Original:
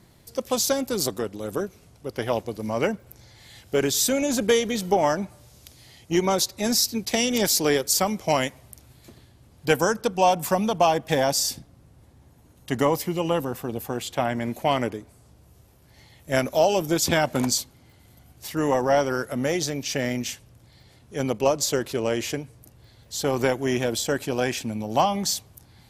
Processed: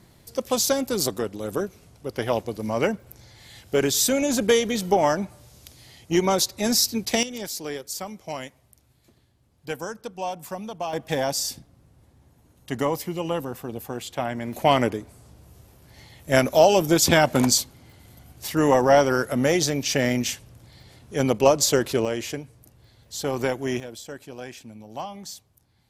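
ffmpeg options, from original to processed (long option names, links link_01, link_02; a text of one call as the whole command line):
ffmpeg -i in.wav -af "asetnsamples=nb_out_samples=441:pad=0,asendcmd='7.23 volume volume -11dB;10.93 volume volume -3dB;14.53 volume volume 4dB;22.05 volume volume -2.5dB;23.8 volume volume -13dB',volume=1dB" out.wav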